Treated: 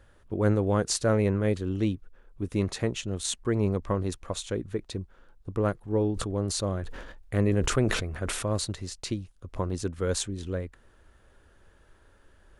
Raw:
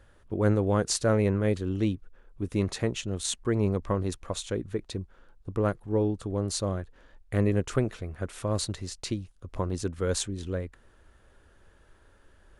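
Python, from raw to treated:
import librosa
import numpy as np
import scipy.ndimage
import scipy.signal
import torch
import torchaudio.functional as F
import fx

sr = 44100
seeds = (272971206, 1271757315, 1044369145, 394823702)

y = fx.sustainer(x, sr, db_per_s=40.0, at=(6.15, 8.52), fade=0.02)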